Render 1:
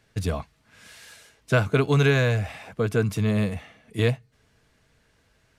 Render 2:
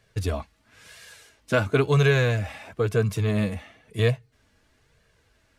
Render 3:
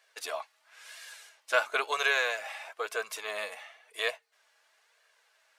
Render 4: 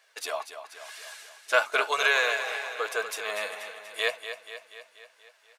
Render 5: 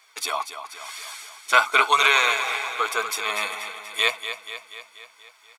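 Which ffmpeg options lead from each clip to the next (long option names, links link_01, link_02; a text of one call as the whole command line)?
ffmpeg -i in.wav -af "flanger=delay=1.7:depth=1.9:regen=-32:speed=0.99:shape=sinusoidal,volume=3.5dB" out.wav
ffmpeg -i in.wav -af "highpass=frequency=650:width=0.5412,highpass=frequency=650:width=1.3066" out.wav
ffmpeg -i in.wav -af "aecho=1:1:241|482|723|964|1205|1446|1687:0.316|0.187|0.11|0.0649|0.0383|0.0226|0.0133,volume=3.5dB" out.wav
ffmpeg -i in.wav -af "aecho=1:1:0.9:0.74,volume=6dB" out.wav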